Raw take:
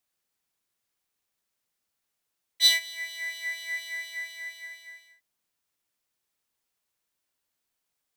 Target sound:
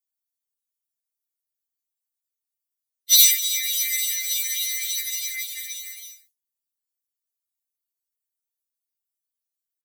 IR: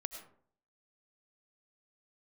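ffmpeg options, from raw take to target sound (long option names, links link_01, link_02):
-filter_complex "[0:a]agate=range=-33dB:threshold=-54dB:ratio=3:detection=peak,aeval=exprs='0.398*(cos(1*acos(clip(val(0)/0.398,-1,1)))-cos(1*PI/2))+0.00398*(cos(3*acos(clip(val(0)/0.398,-1,1)))-cos(3*PI/2))+0.0126*(cos(4*acos(clip(val(0)/0.398,-1,1)))-cos(4*PI/2))+0.141*(cos(5*acos(clip(val(0)/0.398,-1,1)))-cos(5*PI/2))+0.00447*(cos(8*acos(clip(val(0)/0.398,-1,1)))-cos(8*PI/2))':channel_layout=same,asplit=2[link_01][link_02];[link_02]acompressor=threshold=-26dB:ratio=16,volume=-3dB[link_03];[link_01][link_03]amix=inputs=2:normalize=0,aexciter=amount=10.6:drive=8.7:freq=2000,afftfilt=real='hypot(re,im)*cos(2*PI*random(0))':imag='hypot(re,im)*sin(2*PI*random(1))':win_size=512:overlap=0.75,atempo=0.83,aderivative,afftfilt=real='re*3.46*eq(mod(b,12),0)':imag='im*3.46*eq(mod(b,12),0)':win_size=2048:overlap=0.75,volume=-8.5dB"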